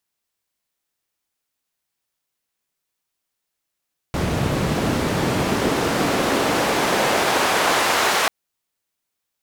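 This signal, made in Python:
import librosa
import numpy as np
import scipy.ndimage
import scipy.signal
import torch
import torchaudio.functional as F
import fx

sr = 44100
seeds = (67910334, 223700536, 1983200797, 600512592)

y = fx.riser_noise(sr, seeds[0], length_s=4.14, colour='white', kind='bandpass', start_hz=110.0, end_hz=990.0, q=0.74, swell_db=-6.0, law='exponential')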